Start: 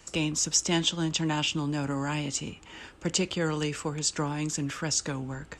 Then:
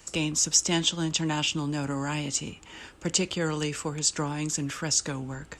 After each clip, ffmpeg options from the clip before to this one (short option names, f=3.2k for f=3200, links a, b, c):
-af "highshelf=f=6.6k:g=6.5"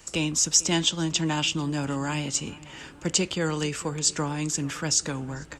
-filter_complex "[0:a]asplit=2[a][b];[b]adelay=447,lowpass=f=2.3k:p=1,volume=-19.5dB,asplit=2[c][d];[d]adelay=447,lowpass=f=2.3k:p=1,volume=0.54,asplit=2[e][f];[f]adelay=447,lowpass=f=2.3k:p=1,volume=0.54,asplit=2[g][h];[h]adelay=447,lowpass=f=2.3k:p=1,volume=0.54[i];[a][c][e][g][i]amix=inputs=5:normalize=0,volume=1.5dB"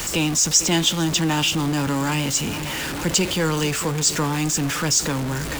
-af "aeval=exprs='val(0)+0.5*0.0562*sgn(val(0))':c=same,volume=2dB"